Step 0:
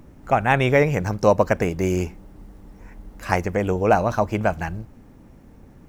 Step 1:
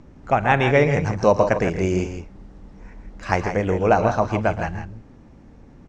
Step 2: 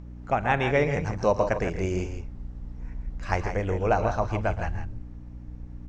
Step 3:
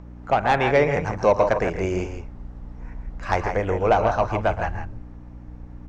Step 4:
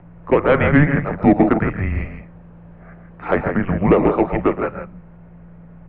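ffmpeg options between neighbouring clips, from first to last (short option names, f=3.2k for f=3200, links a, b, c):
-filter_complex "[0:a]lowpass=f=6.8k:w=0.5412,lowpass=f=6.8k:w=1.3066,asplit=2[a][b];[b]aecho=0:1:41|115|116|136|162:0.112|0.133|0.106|0.237|0.335[c];[a][c]amix=inputs=2:normalize=0"
-af "asubboost=boost=6:cutoff=69,aeval=exprs='val(0)+0.02*(sin(2*PI*60*n/s)+sin(2*PI*2*60*n/s)/2+sin(2*PI*3*60*n/s)/3+sin(2*PI*4*60*n/s)/4+sin(2*PI*5*60*n/s)/5)':c=same,volume=-6dB"
-filter_complex "[0:a]equalizer=f=950:t=o:w=2.7:g=8.5,acrossover=split=570|2500[a][b][c];[b]asoftclip=type=tanh:threshold=-16dB[d];[a][d][c]amix=inputs=3:normalize=0"
-af "lowshelf=f=150:t=q:w=3:g=6,highpass=f=170:t=q:w=0.5412,highpass=f=170:t=q:w=1.307,lowpass=f=3.1k:t=q:w=0.5176,lowpass=f=3.1k:t=q:w=0.7071,lowpass=f=3.1k:t=q:w=1.932,afreqshift=-290,volume=5.5dB"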